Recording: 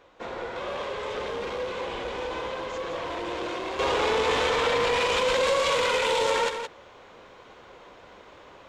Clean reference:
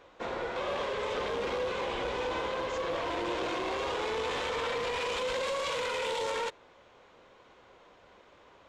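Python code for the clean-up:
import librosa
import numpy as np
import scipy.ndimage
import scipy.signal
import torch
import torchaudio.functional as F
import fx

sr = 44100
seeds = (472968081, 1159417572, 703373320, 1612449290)

y = fx.fix_echo_inverse(x, sr, delay_ms=169, level_db=-8.0)
y = fx.gain(y, sr, db=fx.steps((0.0, 0.0), (3.79, -8.0)))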